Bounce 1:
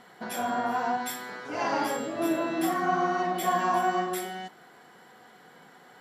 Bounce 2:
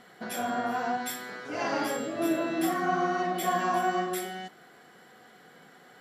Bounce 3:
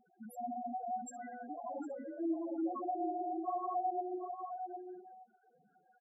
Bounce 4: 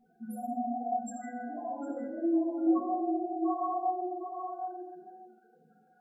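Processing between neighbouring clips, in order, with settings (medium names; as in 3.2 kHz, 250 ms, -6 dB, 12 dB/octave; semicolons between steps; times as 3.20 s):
peaking EQ 930 Hz -7.5 dB 0.35 oct
loudest bins only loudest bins 2; echo from a far wall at 130 m, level -6 dB; trim -5.5 dB
reverberation RT60 0.85 s, pre-delay 4 ms, DRR -4 dB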